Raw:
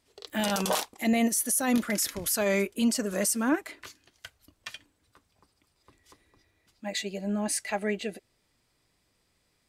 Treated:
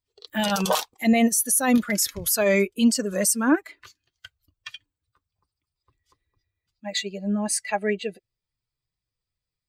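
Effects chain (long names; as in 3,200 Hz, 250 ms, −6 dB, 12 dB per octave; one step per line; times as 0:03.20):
spectral dynamics exaggerated over time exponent 1.5
level +7.5 dB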